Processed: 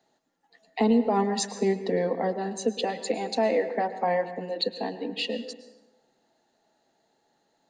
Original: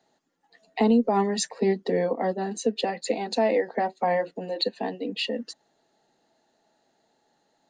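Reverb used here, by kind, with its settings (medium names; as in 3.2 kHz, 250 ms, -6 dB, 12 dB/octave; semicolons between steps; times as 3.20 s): plate-style reverb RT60 1.1 s, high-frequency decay 0.6×, pre-delay 95 ms, DRR 11.5 dB; trim -1.5 dB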